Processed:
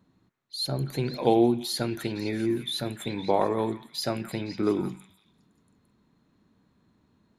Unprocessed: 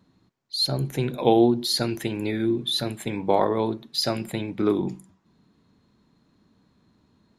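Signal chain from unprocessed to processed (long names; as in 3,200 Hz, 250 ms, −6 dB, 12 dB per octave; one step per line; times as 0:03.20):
parametric band 4,700 Hz −5 dB 0.82 octaves
echo through a band-pass that steps 171 ms, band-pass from 1,700 Hz, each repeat 0.7 octaves, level −7 dB
level −3 dB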